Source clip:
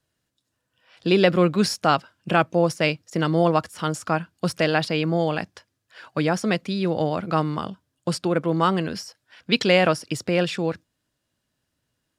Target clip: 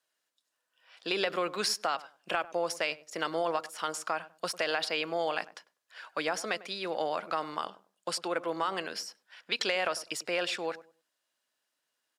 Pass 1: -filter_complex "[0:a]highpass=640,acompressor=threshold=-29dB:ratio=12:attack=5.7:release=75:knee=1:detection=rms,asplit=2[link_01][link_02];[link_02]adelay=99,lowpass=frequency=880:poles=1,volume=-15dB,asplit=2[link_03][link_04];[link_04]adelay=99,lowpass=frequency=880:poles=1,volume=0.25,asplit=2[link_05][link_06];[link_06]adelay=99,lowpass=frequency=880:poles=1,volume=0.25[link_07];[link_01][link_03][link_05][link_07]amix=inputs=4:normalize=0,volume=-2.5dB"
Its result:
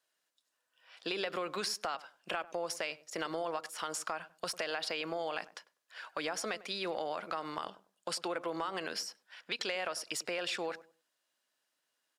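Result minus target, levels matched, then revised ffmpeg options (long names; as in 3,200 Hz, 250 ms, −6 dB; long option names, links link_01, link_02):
downward compressor: peak gain reduction +6.5 dB
-filter_complex "[0:a]highpass=640,acompressor=threshold=-22dB:ratio=12:attack=5.7:release=75:knee=1:detection=rms,asplit=2[link_01][link_02];[link_02]adelay=99,lowpass=frequency=880:poles=1,volume=-15dB,asplit=2[link_03][link_04];[link_04]adelay=99,lowpass=frequency=880:poles=1,volume=0.25,asplit=2[link_05][link_06];[link_06]adelay=99,lowpass=frequency=880:poles=1,volume=0.25[link_07];[link_01][link_03][link_05][link_07]amix=inputs=4:normalize=0,volume=-2.5dB"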